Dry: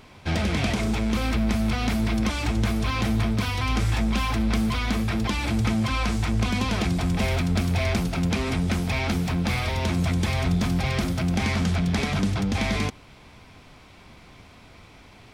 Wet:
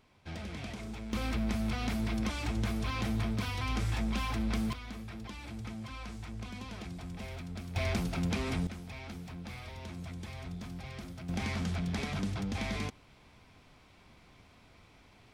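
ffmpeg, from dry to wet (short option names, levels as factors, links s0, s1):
-af "asetnsamples=n=441:p=0,asendcmd='1.13 volume volume -9dB;4.73 volume volume -18.5dB;7.76 volume volume -8dB;8.67 volume volume -19dB;11.29 volume volume -10.5dB',volume=0.141"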